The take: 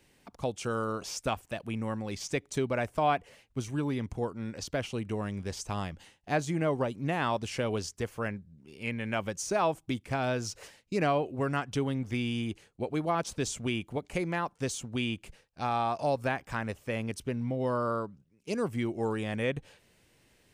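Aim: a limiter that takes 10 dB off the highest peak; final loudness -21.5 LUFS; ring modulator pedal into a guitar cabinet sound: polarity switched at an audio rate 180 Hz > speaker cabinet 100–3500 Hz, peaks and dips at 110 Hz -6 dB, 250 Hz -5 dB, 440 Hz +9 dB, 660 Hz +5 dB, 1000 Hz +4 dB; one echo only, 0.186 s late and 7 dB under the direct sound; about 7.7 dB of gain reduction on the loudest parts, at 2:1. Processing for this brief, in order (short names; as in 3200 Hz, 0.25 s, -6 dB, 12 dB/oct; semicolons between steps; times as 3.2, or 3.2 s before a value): compressor 2:1, threshold -37 dBFS; limiter -31 dBFS; echo 0.186 s -7 dB; polarity switched at an audio rate 180 Hz; speaker cabinet 100–3500 Hz, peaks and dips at 110 Hz -6 dB, 250 Hz -5 dB, 440 Hz +9 dB, 660 Hz +5 dB, 1000 Hz +4 dB; gain +17 dB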